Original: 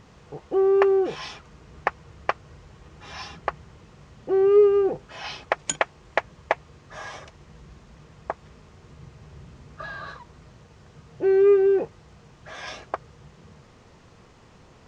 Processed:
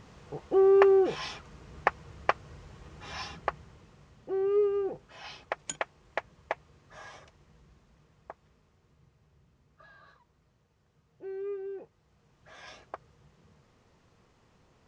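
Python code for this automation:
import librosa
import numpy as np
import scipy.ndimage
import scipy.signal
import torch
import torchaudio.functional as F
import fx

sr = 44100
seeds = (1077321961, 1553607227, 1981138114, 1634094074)

y = fx.gain(x, sr, db=fx.line((3.18, -1.5), (4.3, -10.0), (7.04, -10.0), (9.4, -20.0), (11.84, -20.0), (12.55, -12.0)))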